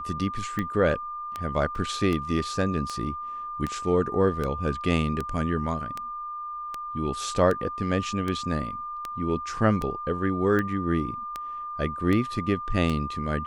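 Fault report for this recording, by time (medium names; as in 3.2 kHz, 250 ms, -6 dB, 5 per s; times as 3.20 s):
tick 78 rpm -16 dBFS
whine 1.2 kHz -32 dBFS
1.75 s: dropout 2.2 ms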